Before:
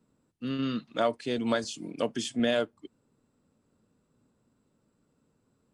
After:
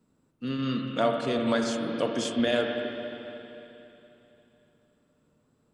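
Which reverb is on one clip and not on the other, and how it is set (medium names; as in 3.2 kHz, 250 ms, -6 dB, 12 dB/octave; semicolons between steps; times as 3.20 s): spring tank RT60 3.2 s, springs 39/45/58 ms, chirp 35 ms, DRR 2 dB; trim +1 dB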